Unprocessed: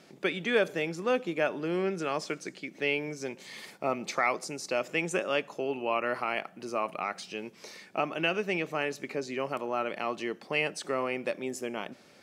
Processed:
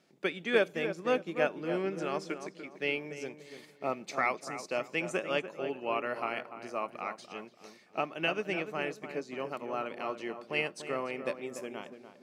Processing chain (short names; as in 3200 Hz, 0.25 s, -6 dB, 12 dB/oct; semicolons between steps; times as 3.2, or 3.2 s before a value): on a send: darkening echo 0.292 s, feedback 49%, low-pass 1700 Hz, level -6.5 dB; on the sum: upward expander 1.5:1, over -46 dBFS